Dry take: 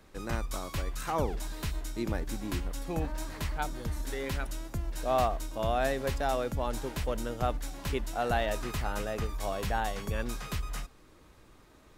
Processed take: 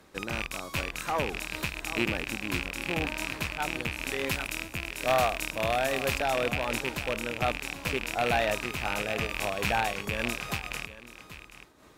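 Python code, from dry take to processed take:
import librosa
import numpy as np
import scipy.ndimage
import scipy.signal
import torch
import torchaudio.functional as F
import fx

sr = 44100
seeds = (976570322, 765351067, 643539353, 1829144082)

y = fx.rattle_buzz(x, sr, strikes_db=-36.0, level_db=-20.0)
y = fx.highpass(y, sr, hz=140.0, slope=6)
y = y + 10.0 ** (-14.5 / 20.0) * np.pad(y, (int(780 * sr / 1000.0), 0))[:len(y)]
y = fx.tube_stage(y, sr, drive_db=20.0, bias=0.55)
y = fx.high_shelf(y, sr, hz=5700.0, db=5.5, at=(4.27, 6.19))
y = fx.am_noise(y, sr, seeds[0], hz=5.7, depth_pct=60)
y = F.gain(torch.from_numpy(y), 8.0).numpy()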